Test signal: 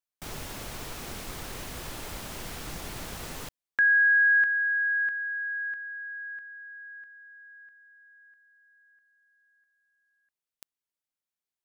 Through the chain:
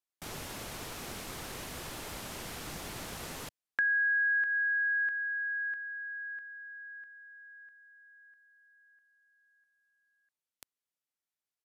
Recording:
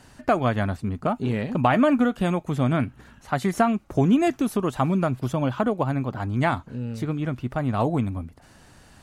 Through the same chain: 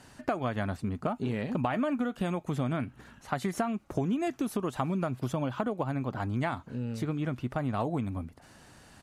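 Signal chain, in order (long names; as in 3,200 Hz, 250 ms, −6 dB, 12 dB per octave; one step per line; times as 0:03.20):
low-shelf EQ 60 Hz −9.5 dB
downward compressor 5 to 1, threshold −25 dBFS
downsampling to 32,000 Hz
level −2 dB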